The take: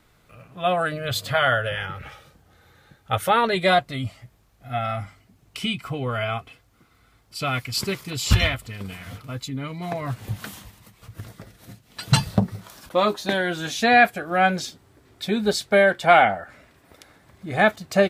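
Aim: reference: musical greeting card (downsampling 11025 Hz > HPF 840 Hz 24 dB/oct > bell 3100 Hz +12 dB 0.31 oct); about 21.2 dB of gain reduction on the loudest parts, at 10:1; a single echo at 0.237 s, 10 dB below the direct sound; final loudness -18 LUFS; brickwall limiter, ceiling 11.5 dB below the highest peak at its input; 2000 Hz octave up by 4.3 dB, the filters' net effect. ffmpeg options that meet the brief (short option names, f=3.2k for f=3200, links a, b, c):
-af "equalizer=f=2k:t=o:g=4.5,acompressor=threshold=-31dB:ratio=10,alimiter=level_in=3.5dB:limit=-24dB:level=0:latency=1,volume=-3.5dB,aecho=1:1:237:0.316,aresample=11025,aresample=44100,highpass=f=840:w=0.5412,highpass=f=840:w=1.3066,equalizer=f=3.1k:t=o:w=0.31:g=12,volume=19dB"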